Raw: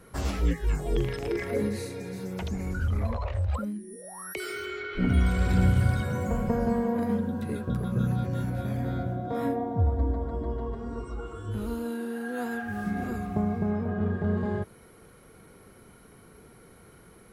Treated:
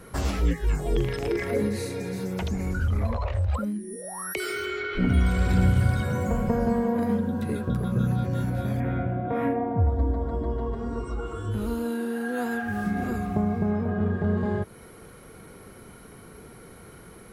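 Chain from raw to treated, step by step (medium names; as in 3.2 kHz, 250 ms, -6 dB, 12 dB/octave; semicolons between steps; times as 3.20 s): 8.80–9.89 s: resonant high shelf 3.3 kHz -9.5 dB, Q 3; in parallel at +0.5 dB: compression, threshold -35 dBFS, peak gain reduction 16.5 dB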